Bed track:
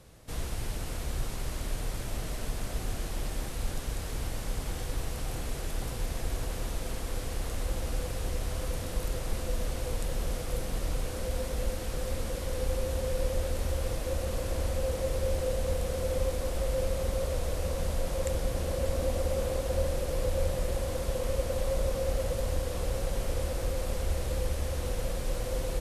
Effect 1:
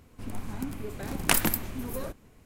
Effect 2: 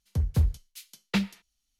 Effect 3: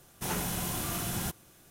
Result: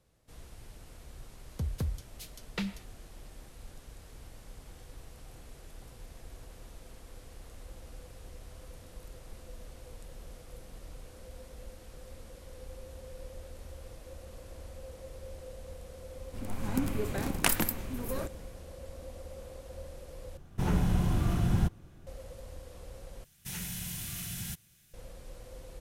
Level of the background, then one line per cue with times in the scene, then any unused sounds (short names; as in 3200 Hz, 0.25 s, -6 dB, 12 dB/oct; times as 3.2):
bed track -15.5 dB
1.44 add 2 -2 dB + compressor 4:1, threshold -28 dBFS
16.15 add 1 -4.5 dB + AGC gain up to 9.5 dB
20.37 replace with 3 -1.5 dB + RIAA curve playback
23.24 replace with 3 -4 dB + band shelf 580 Hz -14.5 dB 2.7 oct